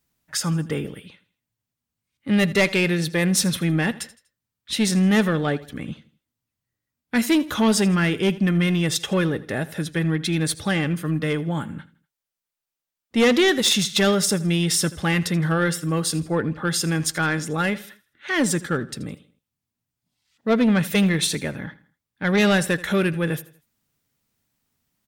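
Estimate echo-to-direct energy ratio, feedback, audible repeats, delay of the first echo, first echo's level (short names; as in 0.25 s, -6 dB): -18.0 dB, 39%, 3, 81 ms, -18.5 dB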